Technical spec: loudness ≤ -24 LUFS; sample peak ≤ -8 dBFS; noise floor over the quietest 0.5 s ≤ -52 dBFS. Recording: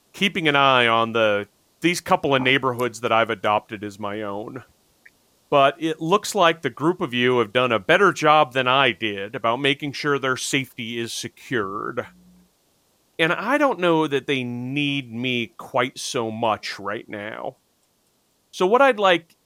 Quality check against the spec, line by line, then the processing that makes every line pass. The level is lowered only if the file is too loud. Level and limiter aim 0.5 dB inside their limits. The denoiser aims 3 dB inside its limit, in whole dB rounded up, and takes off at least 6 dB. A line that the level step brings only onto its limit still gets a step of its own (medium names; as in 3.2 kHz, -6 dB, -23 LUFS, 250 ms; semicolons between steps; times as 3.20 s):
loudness -21.0 LUFS: fail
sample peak -4.0 dBFS: fail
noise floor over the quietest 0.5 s -65 dBFS: pass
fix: trim -3.5 dB; peak limiter -8.5 dBFS